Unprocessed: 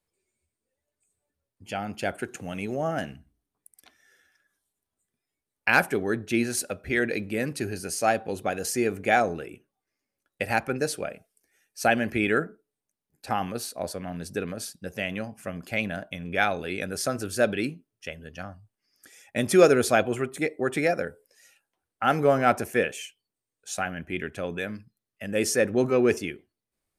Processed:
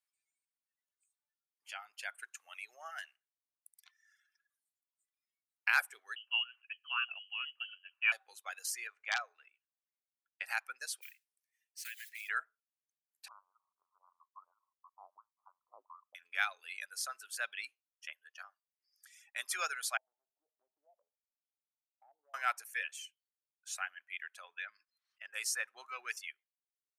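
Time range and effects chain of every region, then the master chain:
6.16–8.12 inverted band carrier 3100 Hz + upward expander, over -33 dBFS
8.87–10.46 HPF 330 Hz + wrapped overs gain 10.5 dB + air absorption 130 m
11.01–12.29 modulation noise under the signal 12 dB + steep high-pass 1700 Hz 48 dB/oct + compressor 5:1, threshold -34 dBFS
13.28–16.15 steep high-pass 1600 Hz 72 dB/oct + inverted band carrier 2700 Hz
19.97–22.34 rippled Chebyshev low-pass 910 Hz, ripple 9 dB + compressor 2.5:1, threshold -45 dBFS
24.44–25.34 LPF 3600 Hz + notches 50/100/150/200/250/300 Hz + sustainer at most 69 dB/s
whole clip: reverb removal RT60 1.5 s; HPF 1100 Hz 24 dB/oct; gain -7 dB

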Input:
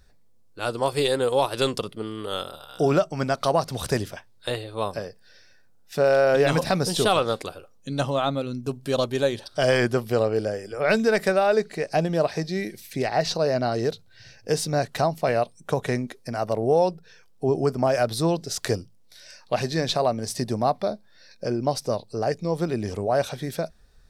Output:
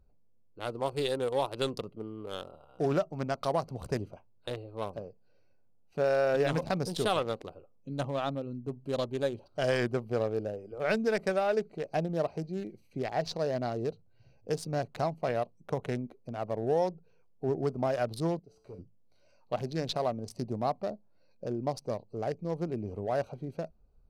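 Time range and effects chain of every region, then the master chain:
18.39–18.79 resonator 63 Hz, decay 0.94 s, harmonics odd, mix 80% + hard clip -31 dBFS
whole clip: Wiener smoothing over 25 samples; notch 7800 Hz, Q 28; gain -7.5 dB

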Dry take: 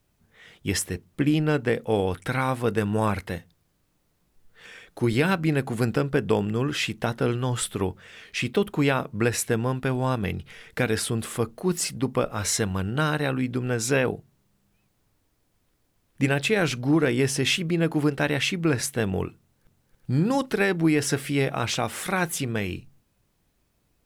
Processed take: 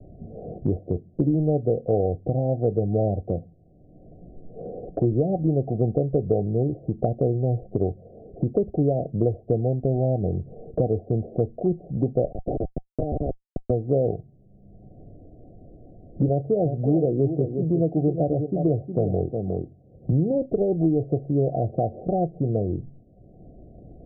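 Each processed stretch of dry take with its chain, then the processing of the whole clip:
12.32–13.7 HPF 380 Hz + Schmitt trigger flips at -21.5 dBFS
16.28–20.12 HPF 47 Hz 24 dB/oct + echo 0.36 s -9 dB
whole clip: Chebyshev low-pass 750 Hz, order 10; dynamic EQ 230 Hz, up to -7 dB, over -37 dBFS, Q 1.1; three-band squash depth 70%; gain +5.5 dB

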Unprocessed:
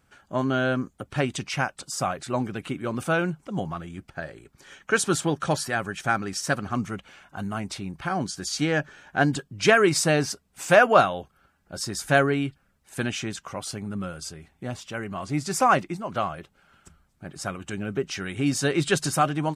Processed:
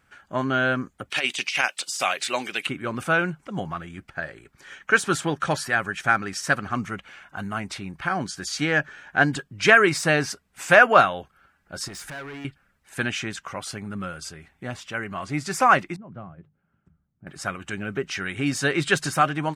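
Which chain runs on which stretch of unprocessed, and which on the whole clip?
1.1–2.67 HPF 400 Hz + resonant high shelf 2000 Hz +10 dB, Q 1.5 + negative-ratio compressor -25 dBFS, ratio -0.5
11.88–12.45 compressor, threshold -29 dBFS + overloaded stage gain 35 dB
15.96–17.27 band-pass 140 Hz, Q 1.3 + notches 50/100/150 Hz
whole clip: de-esser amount 45%; bell 1800 Hz +8 dB 1.5 oct; gain -1.5 dB

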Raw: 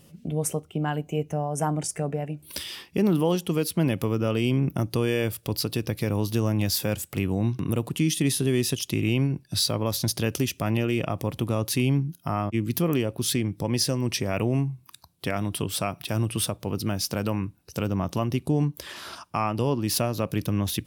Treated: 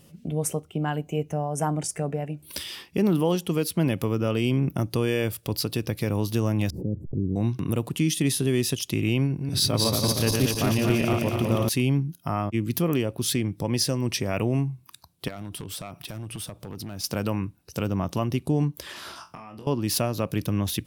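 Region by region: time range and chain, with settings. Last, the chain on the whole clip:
6.7–7.36 level-crossing sampler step -47 dBFS + inverse Chebyshev low-pass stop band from 1300 Hz, stop band 60 dB + backwards sustainer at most 87 dB/s
9.26–11.69 regenerating reverse delay 0.117 s, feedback 74%, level -3 dB + notch 7200 Hz, Q 26
15.28–17.04 compressor 5:1, threshold -31 dBFS + hard clip -29 dBFS
19.11–19.67 compressor 12:1, threshold -38 dBFS + flutter echo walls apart 3.9 m, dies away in 0.24 s
whole clip: dry

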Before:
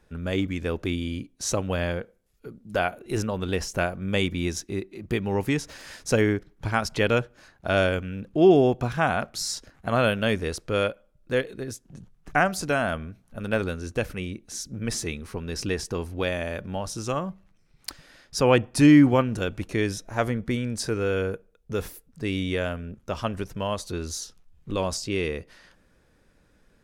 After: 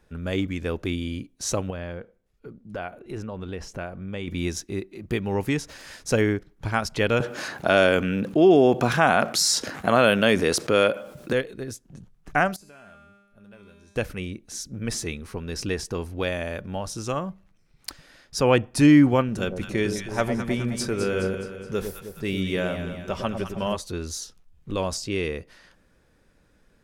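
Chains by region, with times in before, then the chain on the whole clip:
1.7–4.28 LPF 2500 Hz 6 dB/oct + compressor 2:1, threshold -34 dBFS
7.2–11.33 HPF 180 Hz + fast leveller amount 50%
12.56–13.96 resonator 200 Hz, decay 0.96 s, mix 90% + compressor 2:1, threshold -50 dBFS
19.28–23.77 comb 5.2 ms, depth 34% + echo with dull and thin repeats by turns 0.105 s, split 850 Hz, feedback 72%, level -6 dB
whole clip: dry

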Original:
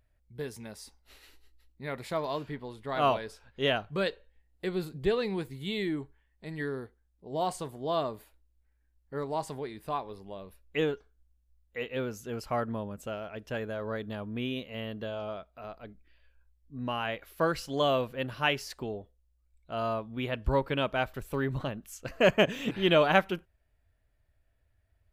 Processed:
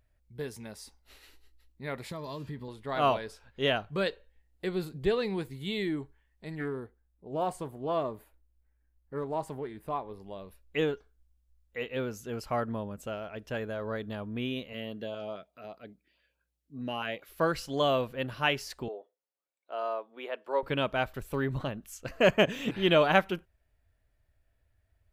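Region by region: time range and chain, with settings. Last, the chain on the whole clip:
2.11–2.68 tone controls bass +10 dB, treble +8 dB + notch comb 740 Hz + compressor 3:1, threshold -37 dBFS
6.55–10.2 bell 4800 Hz -9.5 dB 1.8 oct + Doppler distortion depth 0.15 ms
14.73–17.29 HPF 140 Hz + LFO notch saw up 4.8 Hz 710–2000 Hz
18.88–20.63 HPF 400 Hz 24 dB/oct + high shelf 2300 Hz -10 dB
whole clip: dry

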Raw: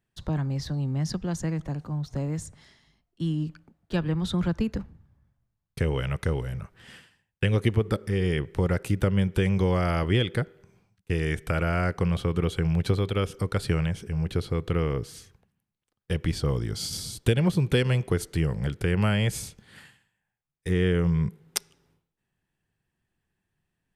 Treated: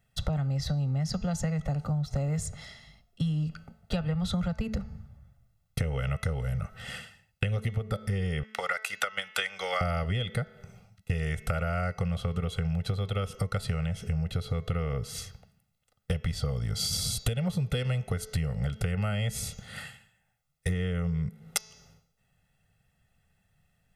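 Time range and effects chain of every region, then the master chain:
8.43–9.81 HPF 1300 Hz + high shelf 8800 Hz -10 dB + transient shaper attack +9 dB, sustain -4 dB
whole clip: comb 1.5 ms, depth 99%; de-hum 217.1 Hz, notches 32; compressor 12:1, threshold -32 dBFS; gain +6 dB

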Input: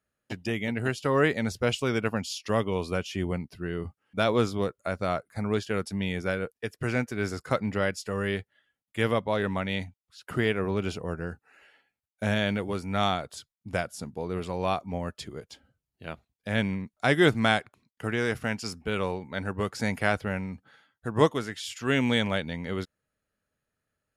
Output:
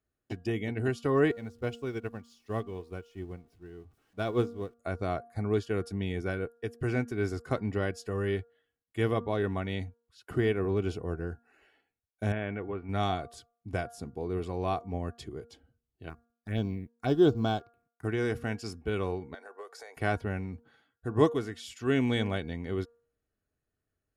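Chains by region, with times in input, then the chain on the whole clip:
1.31–4.74 zero-crossing step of -38.5 dBFS + upward expander 2.5:1, over -34 dBFS
12.32–12.89 steep low-pass 2600 Hz + low shelf 440 Hz -6.5 dB
16.09–18.05 G.711 law mismatch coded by A + envelope phaser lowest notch 430 Hz, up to 2000 Hz, full sweep at -23 dBFS
19.34–19.97 Chebyshev high-pass 460 Hz, order 4 + compressor 12:1, threshold -36 dBFS + bell 2800 Hz -10 dB 0.35 oct
whole clip: tilt shelf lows +5 dB, about 640 Hz; comb 2.7 ms, depth 45%; de-hum 234.8 Hz, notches 7; gain -4 dB

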